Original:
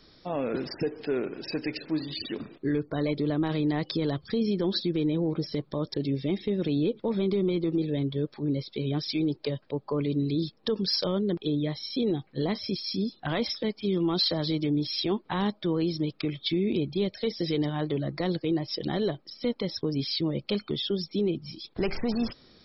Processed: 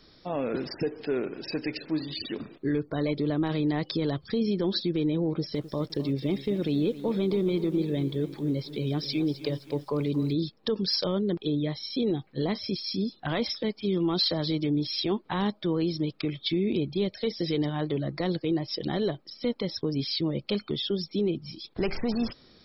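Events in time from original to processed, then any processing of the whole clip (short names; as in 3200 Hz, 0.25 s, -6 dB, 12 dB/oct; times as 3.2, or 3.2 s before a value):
5.29–10.33 lo-fi delay 0.26 s, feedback 55%, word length 8-bit, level -14 dB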